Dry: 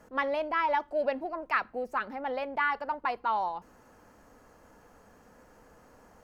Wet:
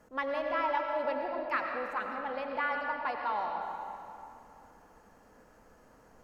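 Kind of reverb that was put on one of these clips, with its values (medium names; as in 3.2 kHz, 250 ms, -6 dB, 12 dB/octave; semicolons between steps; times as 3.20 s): algorithmic reverb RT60 2.7 s, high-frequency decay 0.75×, pre-delay 55 ms, DRR 2 dB; trim -4.5 dB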